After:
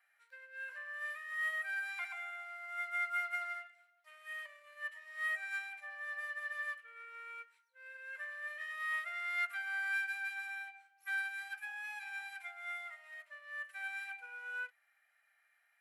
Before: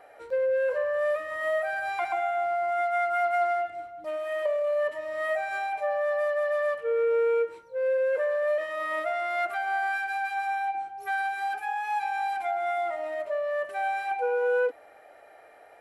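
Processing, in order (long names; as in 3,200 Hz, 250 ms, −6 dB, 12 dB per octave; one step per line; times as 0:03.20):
four-pole ladder high-pass 1,400 Hz, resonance 35%
high-shelf EQ 9,800 Hz +10 dB
expander for the loud parts 1.5 to 1, over −58 dBFS
level +2 dB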